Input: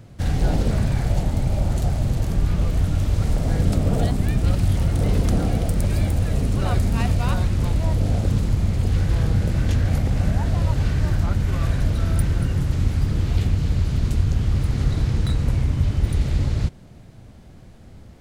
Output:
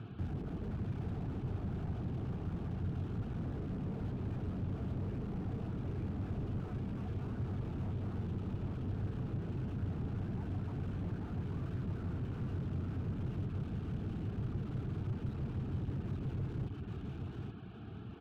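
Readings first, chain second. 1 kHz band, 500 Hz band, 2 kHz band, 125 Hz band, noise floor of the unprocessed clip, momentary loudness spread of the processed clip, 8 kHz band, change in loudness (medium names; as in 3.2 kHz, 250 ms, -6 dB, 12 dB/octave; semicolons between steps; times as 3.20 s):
-18.0 dB, -15.5 dB, -20.0 dB, -17.0 dB, -44 dBFS, 2 LU, under -30 dB, -18.0 dB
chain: hard clipper -20.5 dBFS, distortion -8 dB; cabinet simulation 140–2800 Hz, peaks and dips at 150 Hz -5 dB, 240 Hz -3 dB, 440 Hz +9 dB, 990 Hz -9 dB; static phaser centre 2 kHz, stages 6; compression 2:1, threshold -46 dBFS, peak gain reduction 10.5 dB; reverb removal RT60 0.61 s; on a send: delay 826 ms -5 dB; on the sum: slew-rate limiter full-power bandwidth 1.5 Hz; trim +6 dB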